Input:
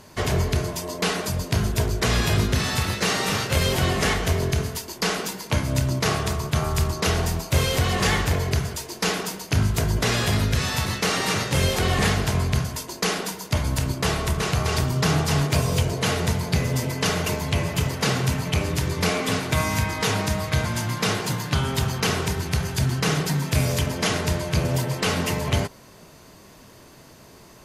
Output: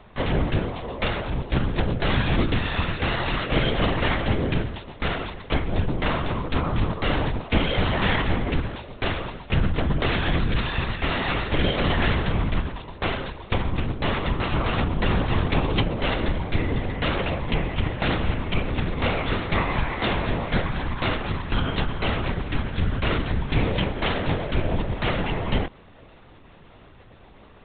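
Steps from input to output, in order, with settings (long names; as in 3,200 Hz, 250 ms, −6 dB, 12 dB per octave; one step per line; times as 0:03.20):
linear-prediction vocoder at 8 kHz whisper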